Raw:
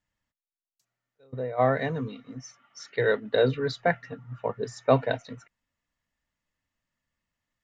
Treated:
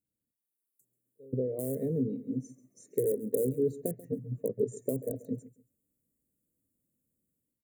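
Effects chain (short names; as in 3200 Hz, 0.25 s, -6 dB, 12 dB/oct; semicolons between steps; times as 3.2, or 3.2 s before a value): in parallel at -9 dB: wrapped overs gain 16.5 dB; on the sum: compressor 8:1, threshold -29 dBFS, peak gain reduction 15 dB; HPF 400 Hz 6 dB/oct; AGC gain up to 9 dB; inverse Chebyshev band-stop 780–5400 Hz, stop band 40 dB; on a send: feedback echo 0.137 s, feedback 25%, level -18 dB; on the sum: gain +2 dB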